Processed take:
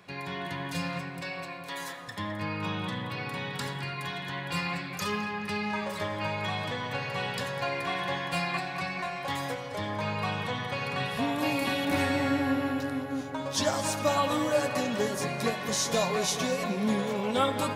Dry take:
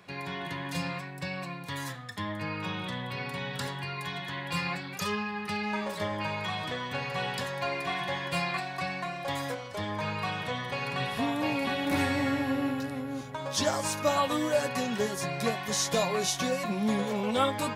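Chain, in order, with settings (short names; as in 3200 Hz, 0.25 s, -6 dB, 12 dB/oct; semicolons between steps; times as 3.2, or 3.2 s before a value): 1.21–2.08 HPF 350 Hz 24 dB/oct; 8.97–9.37 doubler 19 ms -5 dB; 11.38–11.85 high shelf 6300 Hz +12 dB; darkening echo 0.212 s, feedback 71%, low-pass 3200 Hz, level -10 dB; reverb RT60 0.75 s, pre-delay 68 ms, DRR 17.5 dB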